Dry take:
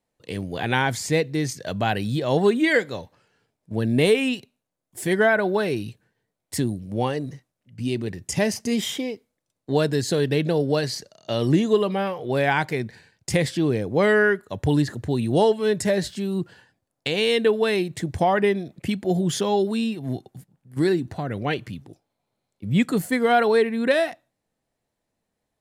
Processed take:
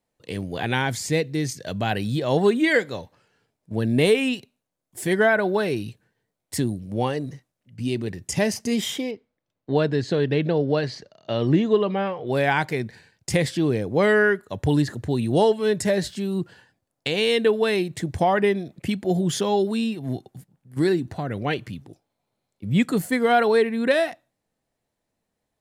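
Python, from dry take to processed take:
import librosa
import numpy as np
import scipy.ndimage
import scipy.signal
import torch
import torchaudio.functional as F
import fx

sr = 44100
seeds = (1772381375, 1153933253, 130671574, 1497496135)

y = fx.peak_eq(x, sr, hz=980.0, db=-3.5, octaves=1.9, at=(0.66, 1.91))
y = fx.lowpass(y, sr, hz=3400.0, slope=12, at=(9.11, 12.27))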